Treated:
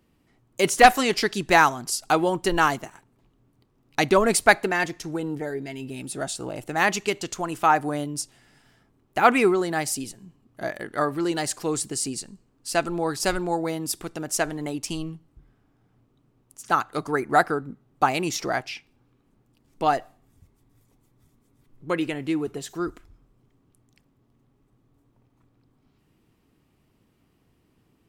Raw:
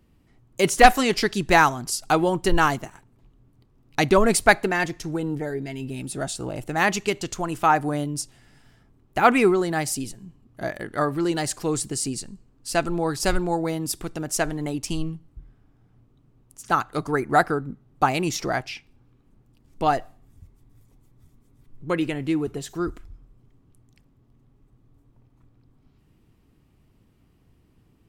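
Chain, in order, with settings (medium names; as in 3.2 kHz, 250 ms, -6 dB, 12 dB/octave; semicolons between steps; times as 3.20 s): bass shelf 130 Hz -11.5 dB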